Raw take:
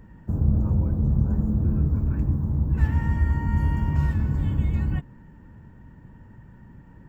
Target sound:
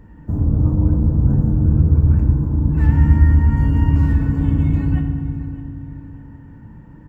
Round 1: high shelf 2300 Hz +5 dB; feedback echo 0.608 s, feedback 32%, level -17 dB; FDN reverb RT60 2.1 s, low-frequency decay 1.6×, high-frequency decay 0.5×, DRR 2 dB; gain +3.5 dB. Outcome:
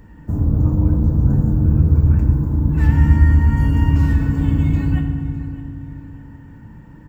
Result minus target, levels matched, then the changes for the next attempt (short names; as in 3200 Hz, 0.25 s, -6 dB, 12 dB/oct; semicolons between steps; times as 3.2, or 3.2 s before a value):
4000 Hz band +6.0 dB
change: high shelf 2300 Hz -4.5 dB